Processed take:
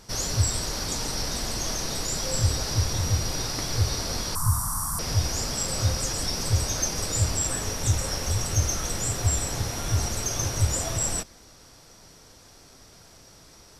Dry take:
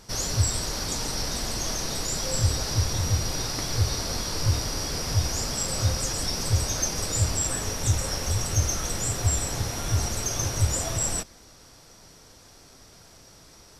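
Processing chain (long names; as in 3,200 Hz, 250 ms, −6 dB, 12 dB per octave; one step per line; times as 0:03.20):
0:04.35–0:04.99: drawn EQ curve 200 Hz 0 dB, 450 Hz −28 dB, 1,100 Hz +12 dB, 2,500 Hz −25 dB, 5,000 Hz −12 dB, 8,600 Hz +14 dB, 13,000 Hz +12 dB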